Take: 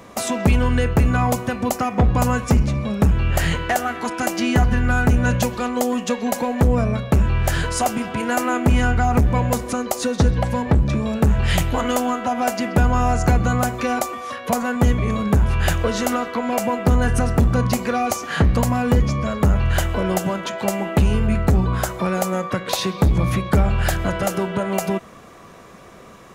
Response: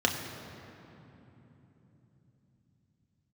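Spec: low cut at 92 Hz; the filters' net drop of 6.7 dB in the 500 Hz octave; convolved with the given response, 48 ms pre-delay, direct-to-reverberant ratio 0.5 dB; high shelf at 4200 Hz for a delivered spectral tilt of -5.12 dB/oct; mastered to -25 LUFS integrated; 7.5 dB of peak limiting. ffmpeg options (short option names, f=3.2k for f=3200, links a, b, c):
-filter_complex "[0:a]highpass=92,equalizer=f=500:t=o:g=-8.5,highshelf=f=4.2k:g=6.5,alimiter=limit=-12dB:level=0:latency=1,asplit=2[a][b];[1:a]atrim=start_sample=2205,adelay=48[c];[b][c]afir=irnorm=-1:irlink=0,volume=-12dB[d];[a][d]amix=inputs=2:normalize=0,volume=-5.5dB"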